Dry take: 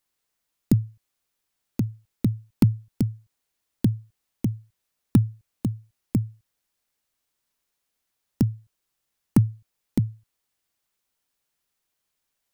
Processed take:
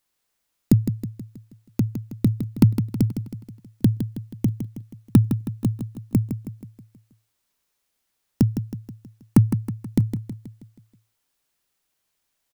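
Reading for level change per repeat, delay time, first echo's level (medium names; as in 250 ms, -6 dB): -6.0 dB, 160 ms, -9.0 dB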